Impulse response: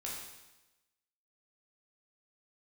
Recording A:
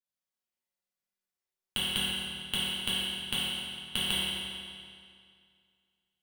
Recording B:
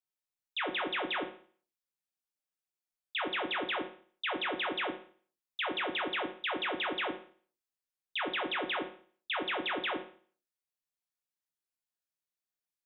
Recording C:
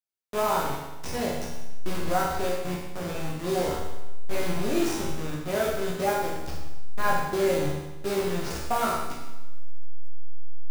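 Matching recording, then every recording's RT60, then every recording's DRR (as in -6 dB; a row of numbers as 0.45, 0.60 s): C; 2.2, 0.45, 1.0 s; -11.5, 1.5, -4.5 dB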